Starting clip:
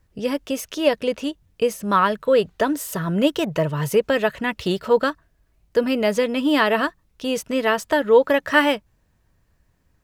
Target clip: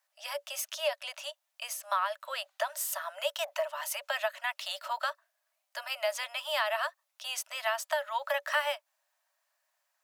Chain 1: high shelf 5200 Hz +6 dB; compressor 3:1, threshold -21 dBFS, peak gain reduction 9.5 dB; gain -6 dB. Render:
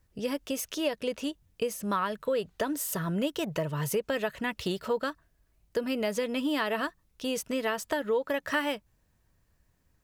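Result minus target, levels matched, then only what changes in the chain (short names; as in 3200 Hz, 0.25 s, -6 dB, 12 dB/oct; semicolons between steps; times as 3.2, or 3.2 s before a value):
500 Hz band +2.5 dB
add first: Chebyshev high-pass 570 Hz, order 10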